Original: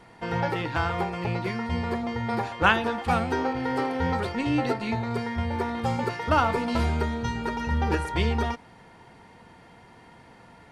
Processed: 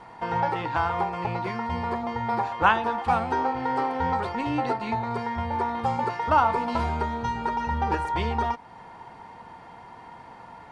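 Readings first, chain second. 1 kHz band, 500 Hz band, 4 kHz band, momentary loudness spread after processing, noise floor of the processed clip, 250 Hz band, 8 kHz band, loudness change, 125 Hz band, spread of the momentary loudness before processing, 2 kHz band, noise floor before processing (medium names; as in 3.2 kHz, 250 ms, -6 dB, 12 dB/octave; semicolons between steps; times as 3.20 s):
+4.5 dB, -1.5 dB, -4.5 dB, 23 LU, -46 dBFS, -3.5 dB, no reading, +0.5 dB, -4.0 dB, 7 LU, -2.0 dB, -52 dBFS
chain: Bessel low-pass 8.4 kHz, order 8; peaking EQ 930 Hz +11 dB 0.97 oct; in parallel at +1 dB: compression, threshold -32 dBFS, peak gain reduction 21.5 dB; on the sum: trim -6.5 dB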